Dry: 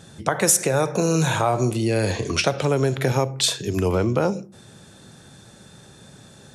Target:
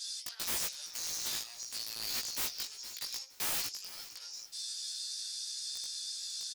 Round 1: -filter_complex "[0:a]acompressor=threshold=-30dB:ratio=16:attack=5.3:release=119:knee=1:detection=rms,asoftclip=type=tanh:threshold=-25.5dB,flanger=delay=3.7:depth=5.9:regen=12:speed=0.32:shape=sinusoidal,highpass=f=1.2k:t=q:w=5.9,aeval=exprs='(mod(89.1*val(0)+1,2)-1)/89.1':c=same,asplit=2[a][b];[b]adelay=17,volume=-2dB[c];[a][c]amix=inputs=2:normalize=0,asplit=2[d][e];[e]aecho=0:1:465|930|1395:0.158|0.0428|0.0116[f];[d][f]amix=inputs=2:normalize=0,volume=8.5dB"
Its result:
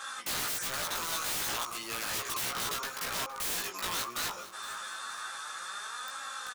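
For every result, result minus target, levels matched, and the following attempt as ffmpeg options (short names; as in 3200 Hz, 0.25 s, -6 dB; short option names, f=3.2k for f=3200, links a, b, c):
1000 Hz band +12.5 dB; soft clip: distortion -11 dB
-filter_complex "[0:a]acompressor=threshold=-30dB:ratio=16:attack=5.3:release=119:knee=1:detection=rms,asoftclip=type=tanh:threshold=-25.5dB,flanger=delay=3.7:depth=5.9:regen=12:speed=0.32:shape=sinusoidal,highpass=f=4.8k:t=q:w=5.9,aeval=exprs='(mod(89.1*val(0)+1,2)-1)/89.1':c=same,asplit=2[a][b];[b]adelay=17,volume=-2dB[c];[a][c]amix=inputs=2:normalize=0,asplit=2[d][e];[e]aecho=0:1:465|930|1395:0.158|0.0428|0.0116[f];[d][f]amix=inputs=2:normalize=0,volume=8.5dB"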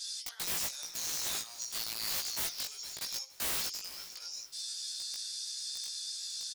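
soft clip: distortion -11 dB
-filter_complex "[0:a]acompressor=threshold=-30dB:ratio=16:attack=5.3:release=119:knee=1:detection=rms,asoftclip=type=tanh:threshold=-35dB,flanger=delay=3.7:depth=5.9:regen=12:speed=0.32:shape=sinusoidal,highpass=f=4.8k:t=q:w=5.9,aeval=exprs='(mod(89.1*val(0)+1,2)-1)/89.1':c=same,asplit=2[a][b];[b]adelay=17,volume=-2dB[c];[a][c]amix=inputs=2:normalize=0,asplit=2[d][e];[e]aecho=0:1:465|930|1395:0.158|0.0428|0.0116[f];[d][f]amix=inputs=2:normalize=0,volume=8.5dB"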